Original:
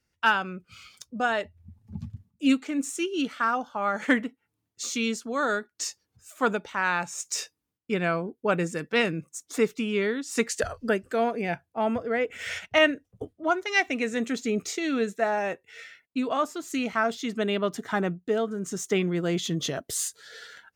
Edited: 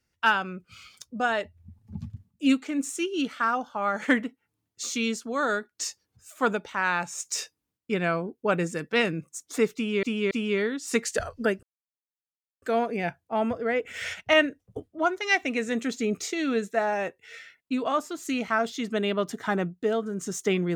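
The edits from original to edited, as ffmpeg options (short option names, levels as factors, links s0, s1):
-filter_complex "[0:a]asplit=4[s0][s1][s2][s3];[s0]atrim=end=10.032[s4];[s1]atrim=start=9.748:end=10.032[s5];[s2]atrim=start=9.748:end=11.07,asetpts=PTS-STARTPTS,afade=t=out:st=1.318:d=0.004:c=hsin,apad=pad_dur=0.99[s6];[s3]atrim=start=11.07,asetpts=PTS-STARTPTS,afade=t=in:d=0.004:c=hsin[s7];[s4][s5]acrossfade=d=0.004:c1=hsin:c2=hsin[s8];[s6][s7]concat=n=2:v=0:a=1[s9];[s8][s9]acrossfade=d=0.004:c1=hsin:c2=hsin"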